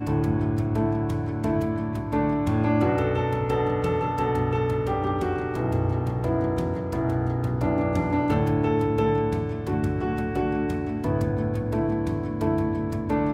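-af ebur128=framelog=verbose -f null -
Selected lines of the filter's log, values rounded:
Integrated loudness:
  I:         -25.2 LUFS
  Threshold: -35.2 LUFS
Loudness range:
  LRA:         1.8 LU
  Threshold: -45.1 LUFS
  LRA low:   -26.2 LUFS
  LRA high:  -24.4 LUFS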